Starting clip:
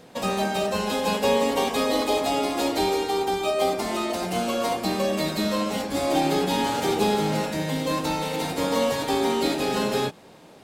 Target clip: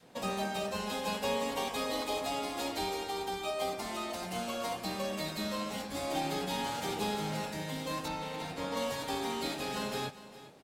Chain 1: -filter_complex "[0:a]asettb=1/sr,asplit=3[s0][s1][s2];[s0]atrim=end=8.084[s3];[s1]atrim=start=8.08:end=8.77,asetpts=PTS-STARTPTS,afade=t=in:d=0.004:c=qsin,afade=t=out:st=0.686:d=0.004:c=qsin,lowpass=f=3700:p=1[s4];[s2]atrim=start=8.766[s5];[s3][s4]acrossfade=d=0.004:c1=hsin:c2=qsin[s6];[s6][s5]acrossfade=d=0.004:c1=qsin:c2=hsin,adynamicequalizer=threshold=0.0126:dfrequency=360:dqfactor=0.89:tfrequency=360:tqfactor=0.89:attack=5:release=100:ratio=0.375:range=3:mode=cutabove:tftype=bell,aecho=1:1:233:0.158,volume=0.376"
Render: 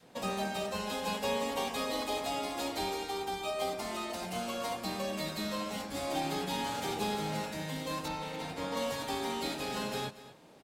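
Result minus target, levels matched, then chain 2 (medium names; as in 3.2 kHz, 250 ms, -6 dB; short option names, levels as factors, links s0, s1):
echo 173 ms early
-filter_complex "[0:a]asettb=1/sr,asplit=3[s0][s1][s2];[s0]atrim=end=8.084[s3];[s1]atrim=start=8.08:end=8.77,asetpts=PTS-STARTPTS,afade=t=in:d=0.004:c=qsin,afade=t=out:st=0.686:d=0.004:c=qsin,lowpass=f=3700:p=1[s4];[s2]atrim=start=8.766[s5];[s3][s4]acrossfade=d=0.004:c1=hsin:c2=qsin[s6];[s6][s5]acrossfade=d=0.004:c1=qsin:c2=hsin,adynamicequalizer=threshold=0.0126:dfrequency=360:dqfactor=0.89:tfrequency=360:tqfactor=0.89:attack=5:release=100:ratio=0.375:range=3:mode=cutabove:tftype=bell,aecho=1:1:406:0.158,volume=0.376"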